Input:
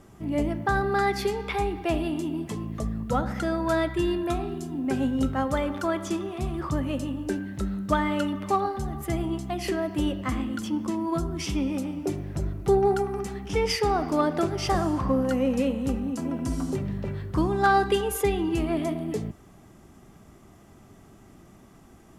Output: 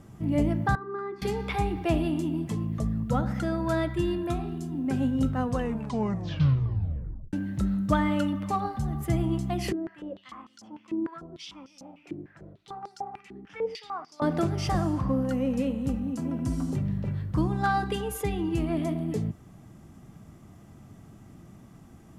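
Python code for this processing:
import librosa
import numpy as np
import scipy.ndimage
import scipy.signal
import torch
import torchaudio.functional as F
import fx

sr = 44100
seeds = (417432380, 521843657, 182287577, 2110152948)

y = fx.double_bandpass(x, sr, hz=650.0, octaves=1.5, at=(0.75, 1.22))
y = fx.filter_held_bandpass(y, sr, hz=6.7, low_hz=340.0, high_hz=5400.0, at=(9.72, 14.22))
y = fx.edit(y, sr, fx.tape_stop(start_s=5.31, length_s=2.02), tone=tone)
y = fx.peak_eq(y, sr, hz=130.0, db=9.0, octaves=1.8)
y = fx.notch(y, sr, hz=390.0, q=12.0)
y = fx.rider(y, sr, range_db=10, speed_s=2.0)
y = F.gain(torch.from_numpy(y), -4.5).numpy()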